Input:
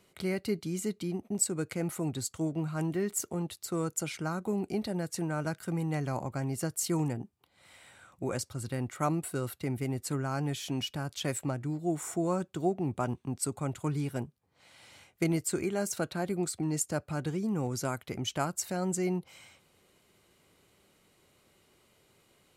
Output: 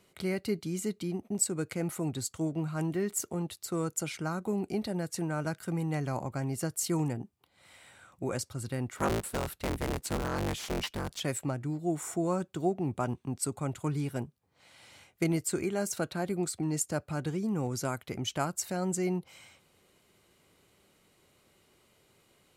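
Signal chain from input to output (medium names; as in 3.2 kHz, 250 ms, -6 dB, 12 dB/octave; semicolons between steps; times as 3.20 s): 8.97–11.20 s: cycle switcher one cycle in 3, inverted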